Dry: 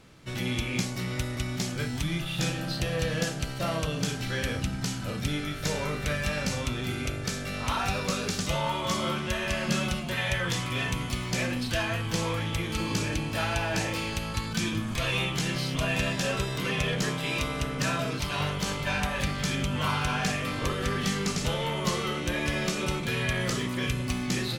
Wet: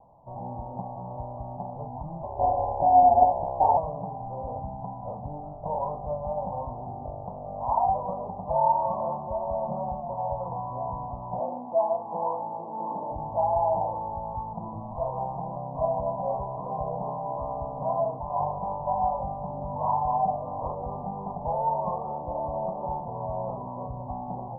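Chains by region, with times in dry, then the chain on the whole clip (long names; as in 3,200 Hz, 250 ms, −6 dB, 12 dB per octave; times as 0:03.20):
0:02.23–0:03.77: parametric band 390 Hz +14.5 dB 1.3 octaves + ring modulation 230 Hz
0:11.39–0:13.12: high-pass filter 220 Hz 24 dB per octave + spectral tilt −1.5 dB per octave
whole clip: Butterworth low-pass 1,000 Hz 96 dB per octave; low shelf with overshoot 520 Hz −11.5 dB, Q 3; level +5 dB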